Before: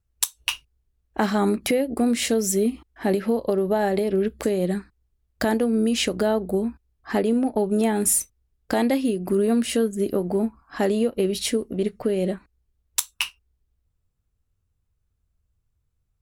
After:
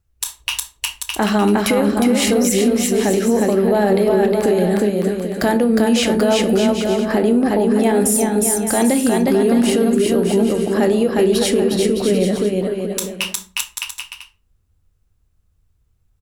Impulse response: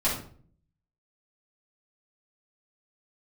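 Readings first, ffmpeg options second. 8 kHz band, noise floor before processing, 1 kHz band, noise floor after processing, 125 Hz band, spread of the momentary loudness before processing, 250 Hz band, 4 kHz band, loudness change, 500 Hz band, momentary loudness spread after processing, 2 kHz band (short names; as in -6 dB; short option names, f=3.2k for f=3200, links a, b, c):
+6.0 dB, -74 dBFS, +7.5 dB, -62 dBFS, +8.0 dB, 8 LU, +8.0 dB, +7.0 dB, +7.0 dB, +7.5 dB, 9 LU, +7.5 dB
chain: -filter_complex "[0:a]aecho=1:1:360|612|788.4|911.9|998.3:0.631|0.398|0.251|0.158|0.1,asplit=2[a][b];[1:a]atrim=start_sample=2205,asetrate=66150,aresample=44100,adelay=21[c];[b][c]afir=irnorm=-1:irlink=0,volume=-19.5dB[d];[a][d]amix=inputs=2:normalize=0,alimiter=limit=-13.5dB:level=0:latency=1:release=39,volume=6.5dB"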